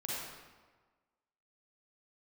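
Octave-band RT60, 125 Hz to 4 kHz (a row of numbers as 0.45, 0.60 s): 1.3, 1.4, 1.4, 1.4, 1.2, 0.95 s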